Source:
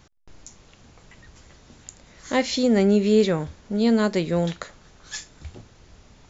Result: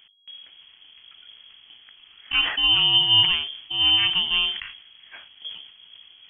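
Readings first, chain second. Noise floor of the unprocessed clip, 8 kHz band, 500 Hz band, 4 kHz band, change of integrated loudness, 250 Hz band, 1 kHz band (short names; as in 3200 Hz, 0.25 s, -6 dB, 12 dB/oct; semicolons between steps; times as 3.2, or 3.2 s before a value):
-53 dBFS, n/a, under -25 dB, +18.5 dB, +3.5 dB, -22.5 dB, -1.5 dB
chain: FFT order left unsorted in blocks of 16 samples; notches 50/100/150/200 Hz; inverted band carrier 3300 Hz; sustainer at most 83 dB/s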